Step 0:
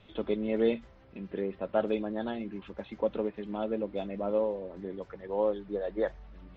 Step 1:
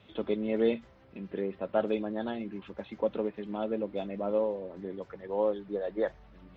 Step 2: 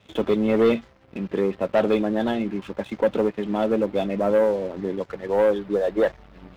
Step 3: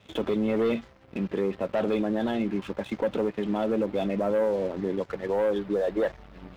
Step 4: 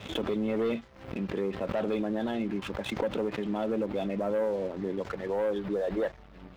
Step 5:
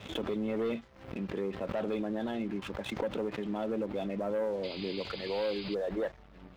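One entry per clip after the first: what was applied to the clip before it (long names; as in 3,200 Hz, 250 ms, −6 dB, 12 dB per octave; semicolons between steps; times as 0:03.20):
high-pass filter 72 Hz
leveller curve on the samples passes 2; level +4 dB
brickwall limiter −19 dBFS, peak gain reduction 8 dB
background raised ahead of every attack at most 93 dB per second; level −4 dB
sound drawn into the spectrogram noise, 0:04.63–0:05.75, 2,000–5,000 Hz −42 dBFS; level −3.5 dB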